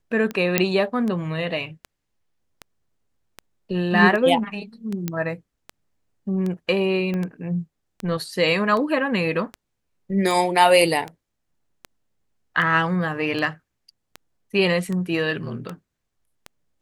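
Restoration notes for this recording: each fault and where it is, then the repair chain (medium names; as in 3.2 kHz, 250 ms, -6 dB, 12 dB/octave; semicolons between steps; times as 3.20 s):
tick 78 rpm -17 dBFS
0.58 s: pop -2 dBFS
5.08 s: pop -11 dBFS
7.14 s: pop -17 dBFS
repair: de-click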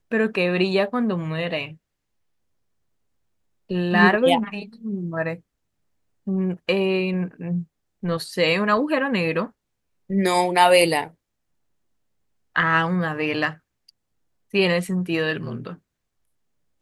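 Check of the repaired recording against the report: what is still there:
7.14 s: pop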